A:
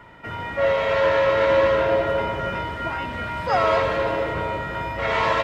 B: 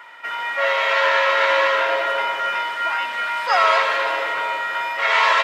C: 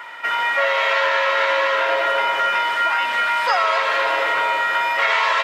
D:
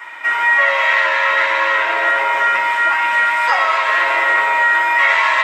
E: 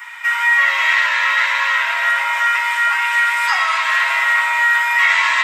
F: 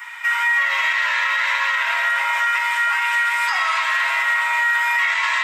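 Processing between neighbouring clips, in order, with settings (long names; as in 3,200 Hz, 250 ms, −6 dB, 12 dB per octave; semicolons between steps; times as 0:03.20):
high-pass filter 1,100 Hz 12 dB per octave; level +8.5 dB
downward compressor, threshold −22 dBFS, peak gain reduction 10 dB; level +6.5 dB
convolution reverb RT60 1.1 s, pre-delay 3 ms, DRR −3.5 dB; level −1 dB
Bessel high-pass filter 1,200 Hz, order 6; high-shelf EQ 5,600 Hz +11 dB
brickwall limiter −10 dBFS, peak gain reduction 6.5 dB; level −1 dB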